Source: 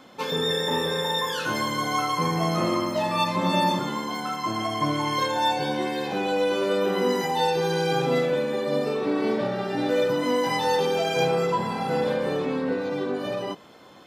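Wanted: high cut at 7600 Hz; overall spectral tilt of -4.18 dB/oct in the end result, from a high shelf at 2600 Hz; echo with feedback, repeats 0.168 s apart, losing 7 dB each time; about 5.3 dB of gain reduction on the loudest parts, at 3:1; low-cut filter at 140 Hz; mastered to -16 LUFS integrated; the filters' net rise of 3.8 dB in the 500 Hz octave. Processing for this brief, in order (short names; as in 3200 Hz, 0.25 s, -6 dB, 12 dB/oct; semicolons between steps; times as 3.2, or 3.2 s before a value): HPF 140 Hz; LPF 7600 Hz; bell 500 Hz +4 dB; high shelf 2600 Hz +6 dB; compressor 3:1, threshold -23 dBFS; feedback echo 0.168 s, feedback 45%, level -7 dB; gain +8.5 dB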